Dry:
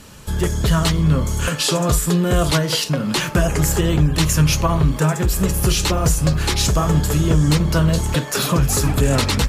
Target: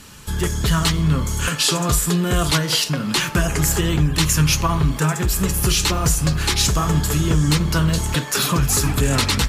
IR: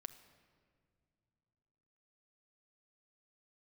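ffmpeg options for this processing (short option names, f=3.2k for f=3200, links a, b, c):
-filter_complex "[0:a]asplit=2[a][b];[b]highpass=f=540:w=0.5412,highpass=f=540:w=1.3066[c];[1:a]atrim=start_sample=2205[d];[c][d]afir=irnorm=-1:irlink=0,volume=0.5dB[e];[a][e]amix=inputs=2:normalize=0,volume=-2dB"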